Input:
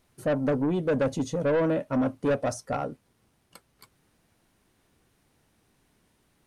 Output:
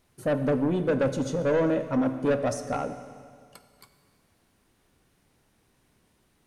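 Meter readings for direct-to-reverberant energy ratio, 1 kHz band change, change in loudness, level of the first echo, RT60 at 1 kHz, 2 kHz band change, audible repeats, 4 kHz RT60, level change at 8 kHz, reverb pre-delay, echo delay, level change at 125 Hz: 9.0 dB, +0.5 dB, +1.0 dB, none, 2.0 s, +0.5 dB, none, 2.0 s, +0.5 dB, 16 ms, none, +0.5 dB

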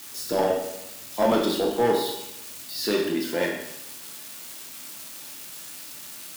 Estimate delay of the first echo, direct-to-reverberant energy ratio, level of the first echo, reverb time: none, -0.5 dB, none, 0.85 s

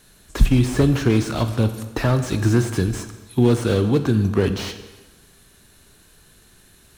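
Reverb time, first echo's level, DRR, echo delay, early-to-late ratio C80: 1.3 s, none, 9.0 dB, none, 12.5 dB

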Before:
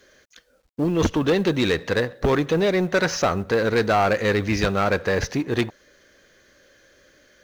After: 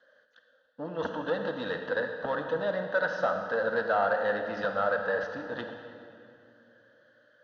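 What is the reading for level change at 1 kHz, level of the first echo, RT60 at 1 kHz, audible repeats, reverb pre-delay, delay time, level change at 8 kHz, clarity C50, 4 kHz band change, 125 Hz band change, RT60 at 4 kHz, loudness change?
-6.0 dB, none, 2.4 s, none, 33 ms, none, under -25 dB, 5.0 dB, -14.5 dB, -19.5 dB, 1.9 s, -8.5 dB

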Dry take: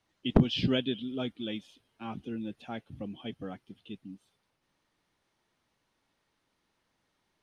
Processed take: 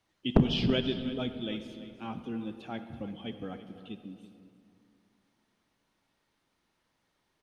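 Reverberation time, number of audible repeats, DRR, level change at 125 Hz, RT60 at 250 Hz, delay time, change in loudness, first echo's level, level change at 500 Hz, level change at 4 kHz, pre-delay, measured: 2.7 s, 1, 8.5 dB, +0.5 dB, 2.9 s, 0.33 s, +0.5 dB, -15.0 dB, +1.0 dB, +0.5 dB, 35 ms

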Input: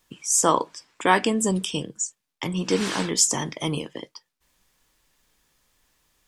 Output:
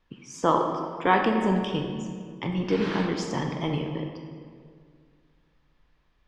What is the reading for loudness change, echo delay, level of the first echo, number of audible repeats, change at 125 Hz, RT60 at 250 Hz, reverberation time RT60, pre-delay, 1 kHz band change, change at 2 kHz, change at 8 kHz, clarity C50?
-3.5 dB, none, none, none, +1.0 dB, 2.3 s, 2.1 s, 26 ms, -0.5 dB, -2.5 dB, -23.0 dB, 4.0 dB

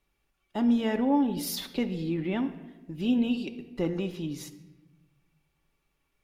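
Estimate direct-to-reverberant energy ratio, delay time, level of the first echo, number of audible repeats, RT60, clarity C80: 6.0 dB, none, none, none, 1.1 s, 14.5 dB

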